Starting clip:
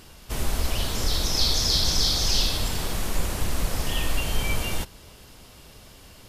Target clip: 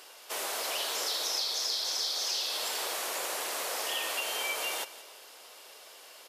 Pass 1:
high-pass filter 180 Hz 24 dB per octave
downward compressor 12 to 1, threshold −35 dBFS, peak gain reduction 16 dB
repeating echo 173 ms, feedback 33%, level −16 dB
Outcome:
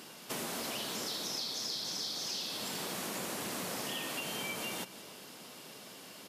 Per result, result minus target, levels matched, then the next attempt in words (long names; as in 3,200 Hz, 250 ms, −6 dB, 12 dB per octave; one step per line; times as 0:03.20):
250 Hz band +16.0 dB; downward compressor: peak gain reduction +6 dB
high-pass filter 460 Hz 24 dB per octave
downward compressor 12 to 1, threshold −35 dBFS, peak gain reduction 16 dB
repeating echo 173 ms, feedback 33%, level −16 dB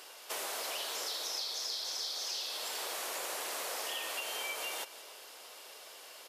downward compressor: peak gain reduction +6 dB
high-pass filter 460 Hz 24 dB per octave
downward compressor 12 to 1, threshold −28.5 dBFS, peak gain reduction 10 dB
repeating echo 173 ms, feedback 33%, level −16 dB